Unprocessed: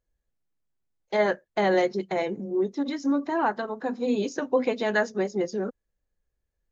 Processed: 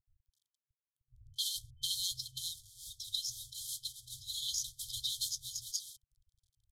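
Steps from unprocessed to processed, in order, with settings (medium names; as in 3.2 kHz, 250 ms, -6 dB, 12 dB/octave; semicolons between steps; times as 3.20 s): CVSD coder 64 kbps; bands offset in time lows, highs 260 ms, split 220 Hz; FFT band-reject 130–3100 Hz; trim +7.5 dB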